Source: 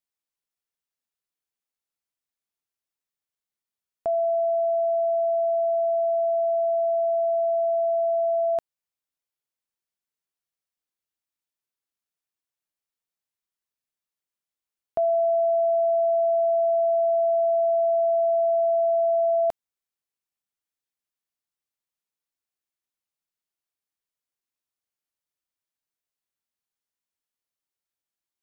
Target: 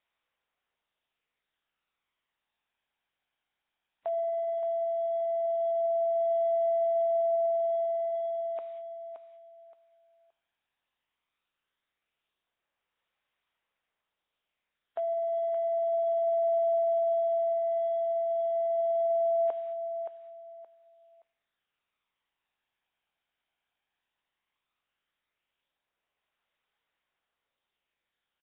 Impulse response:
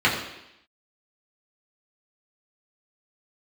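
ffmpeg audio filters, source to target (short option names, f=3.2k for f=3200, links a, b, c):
-filter_complex "[0:a]aeval=exprs='val(0)+0.5*0.00501*sgn(val(0))':c=same,agate=range=-19dB:threshold=-49dB:ratio=16:detection=peak,highpass=480,aphaser=in_gain=1:out_gain=1:delay=1.3:decay=0.29:speed=0.15:type=sinusoidal,aecho=1:1:572|1144|1716:0.355|0.0852|0.0204,asplit=2[a][b];[1:a]atrim=start_sample=2205,asetrate=52920,aresample=44100,adelay=6[c];[b][c]afir=irnorm=-1:irlink=0,volume=-33.5dB[d];[a][d]amix=inputs=2:normalize=0,volume=-6dB" -ar 8000 -c:a nellymoser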